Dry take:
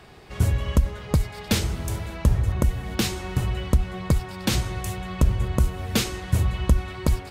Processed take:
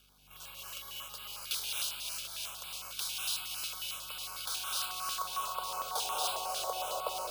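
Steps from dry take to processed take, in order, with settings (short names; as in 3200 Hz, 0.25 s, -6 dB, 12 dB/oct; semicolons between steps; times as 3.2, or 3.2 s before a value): steep high-pass 430 Hz 48 dB/oct; in parallel at -8 dB: wavefolder -28 dBFS; on the sum: high-pass sweep 1900 Hz -> 690 Hz, 3.98–6.44; crossover distortion -50.5 dBFS; hum 50 Hz, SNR 31 dB; on a send: thinning echo 0.304 s, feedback 77%, high-pass 1100 Hz, level -5 dB; on the sum: non-linear reverb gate 0.31 s rising, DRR -3.5 dB; careless resampling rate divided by 3×, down filtered, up hold; Butterworth band-stop 1900 Hz, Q 1.3; stepped notch 11 Hz 930–6000 Hz; gain -7.5 dB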